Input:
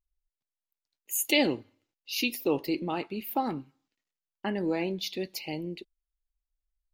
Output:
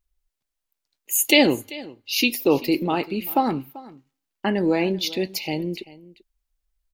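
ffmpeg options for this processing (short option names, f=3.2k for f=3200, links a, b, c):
-af "aecho=1:1:389:0.106,volume=8.5dB"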